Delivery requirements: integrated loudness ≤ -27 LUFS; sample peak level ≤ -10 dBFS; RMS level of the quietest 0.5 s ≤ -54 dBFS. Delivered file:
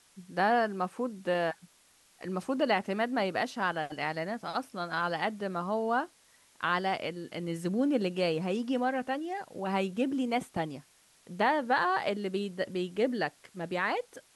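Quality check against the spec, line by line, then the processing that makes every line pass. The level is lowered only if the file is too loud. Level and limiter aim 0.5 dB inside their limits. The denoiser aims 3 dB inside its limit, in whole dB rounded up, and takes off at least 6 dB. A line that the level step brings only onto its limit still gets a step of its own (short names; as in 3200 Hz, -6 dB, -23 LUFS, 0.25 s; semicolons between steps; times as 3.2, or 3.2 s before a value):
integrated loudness -31.5 LUFS: OK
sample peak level -14.0 dBFS: OK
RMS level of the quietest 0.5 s -64 dBFS: OK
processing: none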